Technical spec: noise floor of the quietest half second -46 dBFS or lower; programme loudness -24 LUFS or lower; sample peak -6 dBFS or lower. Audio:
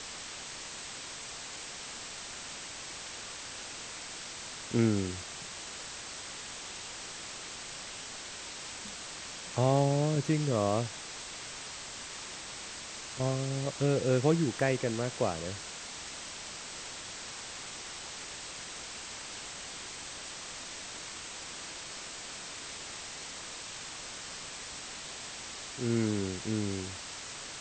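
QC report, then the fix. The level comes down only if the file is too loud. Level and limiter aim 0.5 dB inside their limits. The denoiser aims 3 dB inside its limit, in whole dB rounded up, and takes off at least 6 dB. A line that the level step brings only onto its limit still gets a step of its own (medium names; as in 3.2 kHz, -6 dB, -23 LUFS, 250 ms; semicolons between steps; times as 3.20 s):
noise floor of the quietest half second -43 dBFS: fail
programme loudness -35.5 LUFS: pass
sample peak -12.5 dBFS: pass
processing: noise reduction 6 dB, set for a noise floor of -43 dBFS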